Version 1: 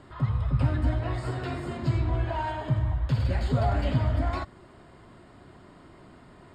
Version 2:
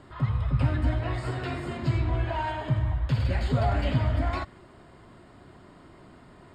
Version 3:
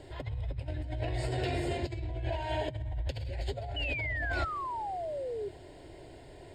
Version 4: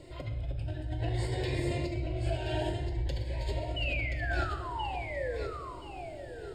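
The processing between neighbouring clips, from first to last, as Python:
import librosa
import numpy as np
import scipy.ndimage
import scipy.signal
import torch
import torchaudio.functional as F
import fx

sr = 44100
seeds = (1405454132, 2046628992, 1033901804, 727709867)

y1 = fx.dynamic_eq(x, sr, hz=2400.0, q=1.2, threshold_db=-53.0, ratio=4.0, max_db=4)
y2 = fx.over_compress(y1, sr, threshold_db=-32.0, ratio=-1.0)
y2 = fx.fixed_phaser(y2, sr, hz=500.0, stages=4)
y2 = fx.spec_paint(y2, sr, seeds[0], shape='fall', start_s=3.76, length_s=1.73, low_hz=390.0, high_hz=3000.0, level_db=-36.0)
y3 = fx.echo_feedback(y2, sr, ms=1027, feedback_pct=25, wet_db=-7.0)
y3 = fx.room_shoebox(y3, sr, seeds[1], volume_m3=560.0, walls='mixed', distance_m=0.84)
y3 = fx.notch_cascade(y3, sr, direction='rising', hz=0.54)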